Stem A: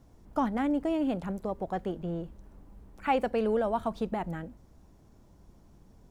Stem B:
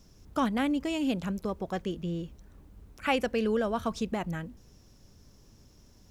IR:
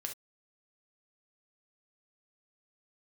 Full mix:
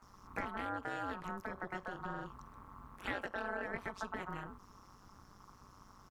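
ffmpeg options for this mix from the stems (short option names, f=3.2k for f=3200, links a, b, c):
-filter_complex "[0:a]aeval=exprs='val(0)*sin(2*PI*1100*n/s)':c=same,volume=0.5dB[a];[1:a]acompressor=threshold=-34dB:ratio=3,adelay=21,volume=-3.5dB,asplit=2[b][c];[c]volume=-8dB[d];[2:a]atrim=start_sample=2205[e];[d][e]afir=irnorm=-1:irlink=0[f];[a][b][f]amix=inputs=3:normalize=0,tremolo=f=190:d=0.947,acompressor=threshold=-41dB:ratio=2"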